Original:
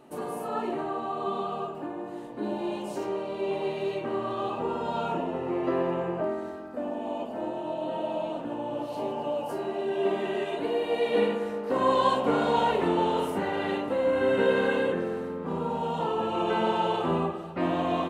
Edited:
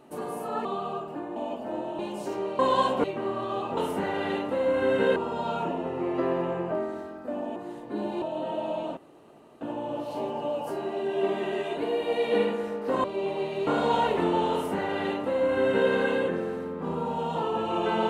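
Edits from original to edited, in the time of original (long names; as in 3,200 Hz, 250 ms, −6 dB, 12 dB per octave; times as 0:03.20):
0:00.65–0:01.32: remove
0:02.03–0:02.69: swap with 0:07.05–0:07.68
0:03.29–0:03.92: swap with 0:11.86–0:12.31
0:08.43: splice in room tone 0.64 s
0:13.16–0:14.55: duplicate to 0:04.65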